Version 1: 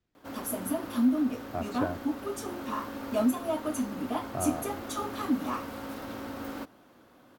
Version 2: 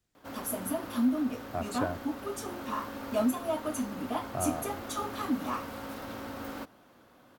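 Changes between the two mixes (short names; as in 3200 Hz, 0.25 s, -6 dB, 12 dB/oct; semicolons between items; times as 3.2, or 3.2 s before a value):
speech: remove air absorption 140 m; master: add bell 310 Hz -3.5 dB 0.88 oct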